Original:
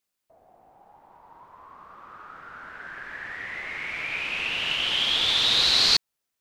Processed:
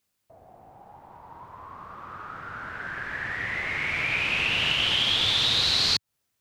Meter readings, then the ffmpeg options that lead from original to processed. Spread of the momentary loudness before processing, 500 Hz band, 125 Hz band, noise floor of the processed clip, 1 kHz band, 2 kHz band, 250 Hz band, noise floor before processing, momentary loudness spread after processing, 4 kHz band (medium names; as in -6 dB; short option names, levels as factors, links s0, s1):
21 LU, +1.5 dB, +8.5 dB, -78 dBFS, +1.5 dB, +2.5 dB, +3.5 dB, -82 dBFS, 20 LU, -1.0 dB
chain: -af "equalizer=f=100:w=0.83:g=10.5,acompressor=threshold=0.0562:ratio=5,volume=1.68"